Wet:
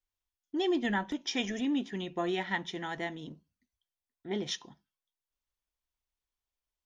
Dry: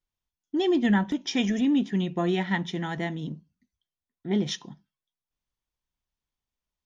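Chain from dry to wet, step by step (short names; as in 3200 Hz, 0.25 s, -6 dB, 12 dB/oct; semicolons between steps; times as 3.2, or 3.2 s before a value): bell 170 Hz -11 dB 1.2 oct; gain -3 dB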